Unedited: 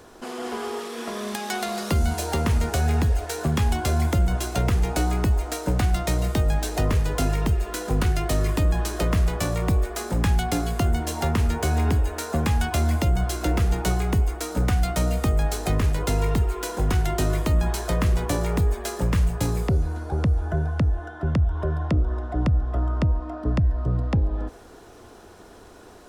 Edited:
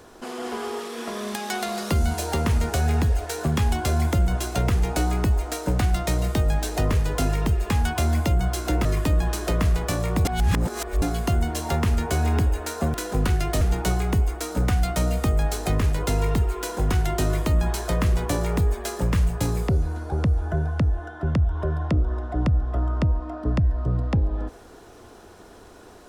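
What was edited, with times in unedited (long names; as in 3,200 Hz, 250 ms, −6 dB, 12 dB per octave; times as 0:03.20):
0:07.70–0:08.37: swap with 0:12.46–0:13.61
0:09.77–0:10.54: reverse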